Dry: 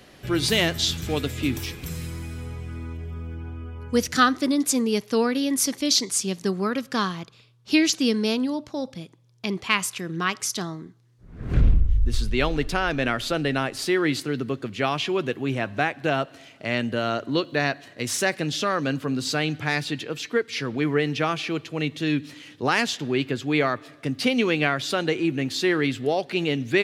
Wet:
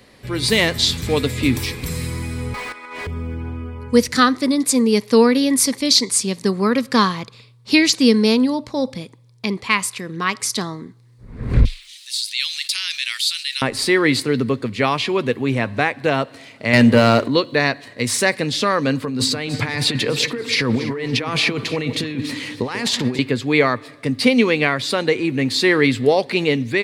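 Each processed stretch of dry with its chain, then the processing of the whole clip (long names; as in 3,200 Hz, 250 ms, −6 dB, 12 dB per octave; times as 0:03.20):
0:02.54–0:03.07: high-pass filter 730 Hz + gate with flip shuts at −38 dBFS, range −26 dB + mid-hump overdrive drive 38 dB, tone 2,200 Hz, clips at −30 dBFS
0:11.65–0:13.62: four-pole ladder high-pass 2,700 Hz, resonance 30% + high-shelf EQ 3,600 Hz +10 dB + envelope flattener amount 50%
0:16.73–0:17.28: mains-hum notches 50/100/150/200/250/300/350/400/450/500 Hz + leveller curve on the samples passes 2
0:19.05–0:23.19: compressor whose output falls as the input rises −31 dBFS + delay that swaps between a low-pass and a high-pass 141 ms, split 1,000 Hz, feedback 53%, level −9.5 dB
whole clip: EQ curve with evenly spaced ripples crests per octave 0.95, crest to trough 6 dB; automatic gain control gain up to 9 dB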